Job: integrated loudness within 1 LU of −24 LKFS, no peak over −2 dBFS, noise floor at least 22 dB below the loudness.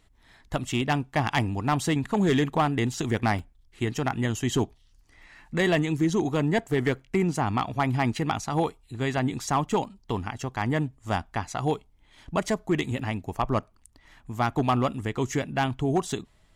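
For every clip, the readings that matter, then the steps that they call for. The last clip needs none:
share of clipped samples 0.5%; peaks flattened at −15.5 dBFS; number of dropouts 1; longest dropout 1.7 ms; integrated loudness −27.5 LKFS; sample peak −15.5 dBFS; target loudness −24.0 LKFS
→ clipped peaks rebuilt −15.5 dBFS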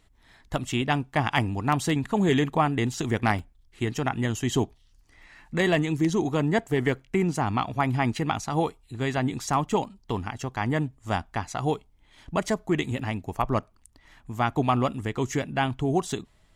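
share of clipped samples 0.0%; number of dropouts 1; longest dropout 1.7 ms
→ repair the gap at 0:03.39, 1.7 ms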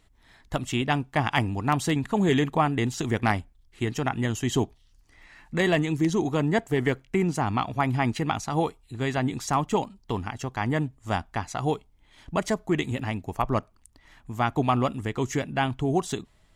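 number of dropouts 0; integrated loudness −27.0 LKFS; sample peak −8.0 dBFS; target loudness −24.0 LKFS
→ level +3 dB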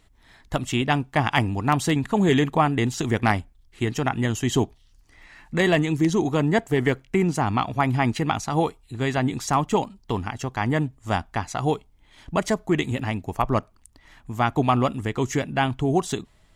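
integrated loudness −24.0 LKFS; sample peak −5.0 dBFS; background noise floor −57 dBFS

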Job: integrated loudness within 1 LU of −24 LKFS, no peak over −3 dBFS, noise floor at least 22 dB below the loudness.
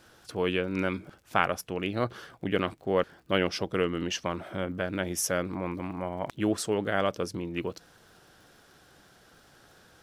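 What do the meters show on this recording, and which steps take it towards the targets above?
crackle rate 33 per second; integrated loudness −30.5 LKFS; sample peak −6.5 dBFS; target loudness −24.0 LKFS
→ click removal
level +6.5 dB
brickwall limiter −3 dBFS

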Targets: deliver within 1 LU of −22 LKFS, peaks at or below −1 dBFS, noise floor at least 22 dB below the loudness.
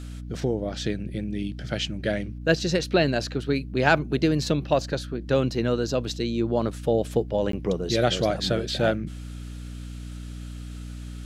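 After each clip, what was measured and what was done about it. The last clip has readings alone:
number of dropouts 1; longest dropout 13 ms; mains hum 60 Hz; hum harmonics up to 300 Hz; level of the hum −34 dBFS; integrated loudness −25.5 LKFS; sample peak −6.0 dBFS; target loudness −22.0 LKFS
→ repair the gap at 0:07.52, 13 ms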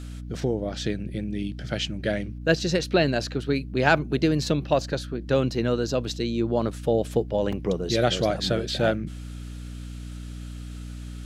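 number of dropouts 0; mains hum 60 Hz; hum harmonics up to 300 Hz; level of the hum −34 dBFS
→ mains-hum notches 60/120/180/240/300 Hz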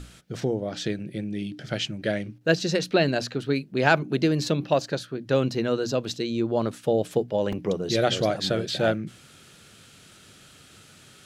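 mains hum none found; integrated loudness −26.0 LKFS; sample peak −6.0 dBFS; target loudness −22.0 LKFS
→ level +4 dB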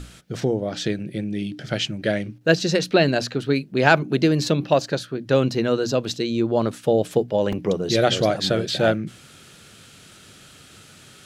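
integrated loudness −22.0 LKFS; sample peak −2.0 dBFS; background noise floor −48 dBFS

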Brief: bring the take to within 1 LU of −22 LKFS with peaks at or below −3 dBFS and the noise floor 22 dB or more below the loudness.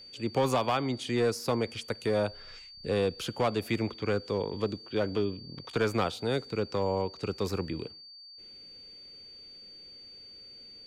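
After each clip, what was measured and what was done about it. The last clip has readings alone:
share of clipped samples 0.7%; peaks flattened at −19.5 dBFS; interfering tone 4,600 Hz; level of the tone −47 dBFS; integrated loudness −31.0 LKFS; sample peak −19.5 dBFS; target loudness −22.0 LKFS
→ clipped peaks rebuilt −19.5 dBFS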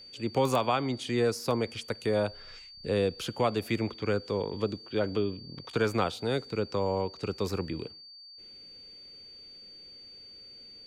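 share of clipped samples 0.0%; interfering tone 4,600 Hz; level of the tone −47 dBFS
→ notch filter 4,600 Hz, Q 30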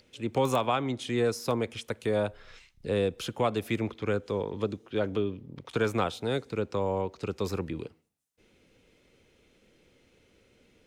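interfering tone none found; integrated loudness −30.5 LKFS; sample peak −10.5 dBFS; target loudness −22.0 LKFS
→ level +8.5 dB
brickwall limiter −3 dBFS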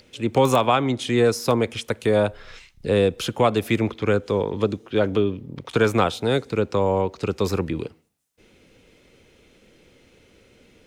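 integrated loudness −22.0 LKFS; sample peak −3.0 dBFS; background noise floor −57 dBFS

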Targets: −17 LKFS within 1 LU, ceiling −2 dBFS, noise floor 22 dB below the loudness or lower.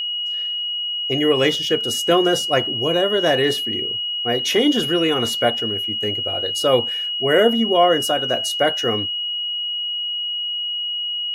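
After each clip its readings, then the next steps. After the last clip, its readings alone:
interfering tone 2,900 Hz; level of the tone −22 dBFS; integrated loudness −19.0 LKFS; sample peak −4.5 dBFS; target loudness −17.0 LKFS
→ notch filter 2,900 Hz, Q 30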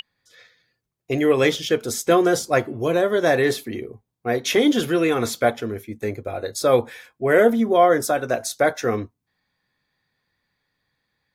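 interfering tone none found; integrated loudness −20.5 LKFS; sample peak −4.5 dBFS; target loudness −17.0 LKFS
→ level +3.5 dB
brickwall limiter −2 dBFS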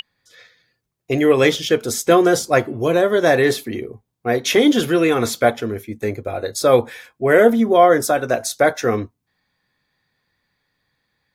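integrated loudness −17.0 LKFS; sample peak −2.0 dBFS; background noise floor −76 dBFS

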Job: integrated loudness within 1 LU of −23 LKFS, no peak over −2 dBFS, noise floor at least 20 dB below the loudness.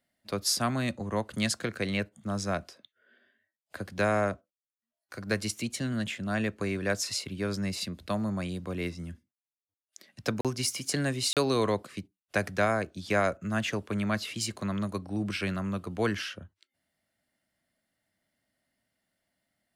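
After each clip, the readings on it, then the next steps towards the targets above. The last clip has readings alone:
number of dropouts 2; longest dropout 37 ms; integrated loudness −31.0 LKFS; sample peak −13.0 dBFS; target loudness −23.0 LKFS
→ repair the gap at 0:10.41/0:11.33, 37 ms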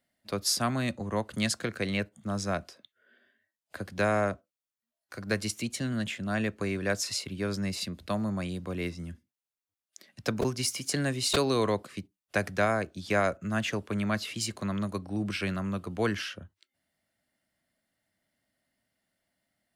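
number of dropouts 0; integrated loudness −31.0 LKFS; sample peak −12.5 dBFS; target loudness −23.0 LKFS
→ level +8 dB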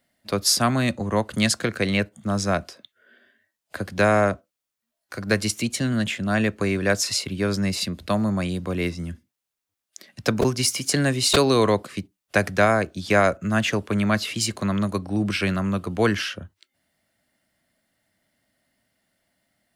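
integrated loudness −23.0 LKFS; sample peak −4.5 dBFS; background noise floor −84 dBFS

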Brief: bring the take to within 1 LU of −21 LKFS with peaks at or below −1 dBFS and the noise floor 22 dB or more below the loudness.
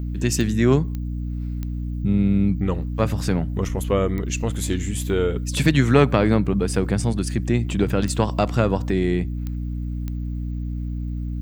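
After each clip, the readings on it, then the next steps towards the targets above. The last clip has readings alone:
number of clicks 7; mains hum 60 Hz; hum harmonics up to 300 Hz; level of the hum −24 dBFS; integrated loudness −22.5 LKFS; sample peak −3.0 dBFS; target loudness −21.0 LKFS
→ click removal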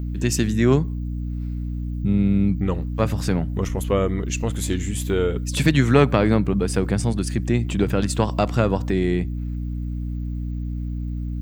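number of clicks 0; mains hum 60 Hz; hum harmonics up to 300 Hz; level of the hum −24 dBFS
→ hum removal 60 Hz, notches 5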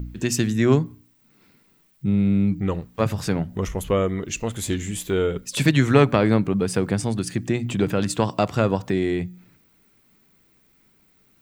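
mains hum none found; integrated loudness −22.5 LKFS; sample peak −3.0 dBFS; target loudness −21.0 LKFS
→ level +1.5 dB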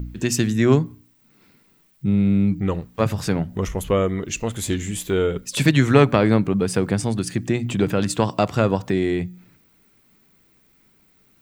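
integrated loudness −21.0 LKFS; sample peak −1.5 dBFS; background noise floor −59 dBFS

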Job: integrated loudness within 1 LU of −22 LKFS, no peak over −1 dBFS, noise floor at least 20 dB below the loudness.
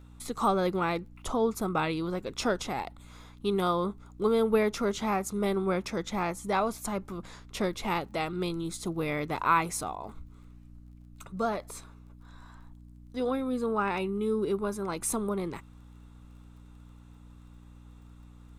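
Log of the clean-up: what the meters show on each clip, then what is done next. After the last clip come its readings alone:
crackle rate 19 per second; mains hum 60 Hz; hum harmonics up to 300 Hz; level of the hum −49 dBFS; integrated loudness −30.5 LKFS; sample peak −11.5 dBFS; target loudness −22.0 LKFS
→ click removal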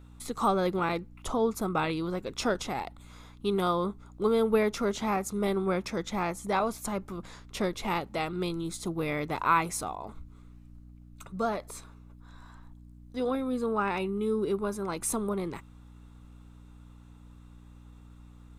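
crackle rate 0 per second; mains hum 60 Hz; hum harmonics up to 300 Hz; level of the hum −49 dBFS
→ hum removal 60 Hz, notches 5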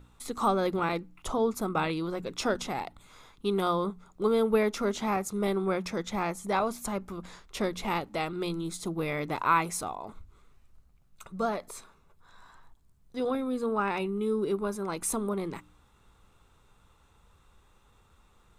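mains hum none found; integrated loudness −30.5 LKFS; sample peak −12.0 dBFS; target loudness −22.0 LKFS
→ level +8.5 dB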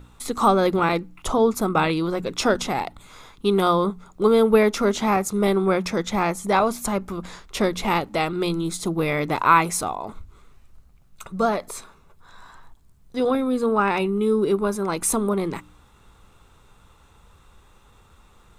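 integrated loudness −22.0 LKFS; sample peak −3.5 dBFS; background noise floor −54 dBFS

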